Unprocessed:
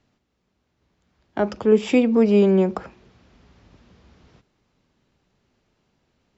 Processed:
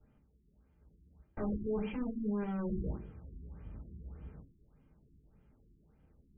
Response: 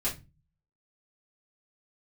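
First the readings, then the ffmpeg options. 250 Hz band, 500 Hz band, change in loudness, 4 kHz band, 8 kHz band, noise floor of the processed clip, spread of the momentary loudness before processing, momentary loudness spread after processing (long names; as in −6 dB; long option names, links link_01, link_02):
−16.5 dB, −21.5 dB, −20.5 dB, below −20 dB, can't be measured, −69 dBFS, 13 LU, 16 LU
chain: -filter_complex "[0:a]agate=range=-10dB:threshold=-45dB:ratio=16:detection=peak,bass=frequency=250:gain=3,treble=frequency=4000:gain=-13,areverse,acompressor=threshold=-29dB:ratio=16,areverse,aeval=exprs='(tanh(158*val(0)+0.4)-tanh(0.4))/158':channel_layout=same[link_01];[1:a]atrim=start_sample=2205,asetrate=88200,aresample=44100[link_02];[link_01][link_02]afir=irnorm=-1:irlink=0,afftfilt=real='re*lt(b*sr/1024,400*pow(3400/400,0.5+0.5*sin(2*PI*1.7*pts/sr)))':imag='im*lt(b*sr/1024,400*pow(3400/400,0.5+0.5*sin(2*PI*1.7*pts/sr)))':win_size=1024:overlap=0.75,volume=6dB"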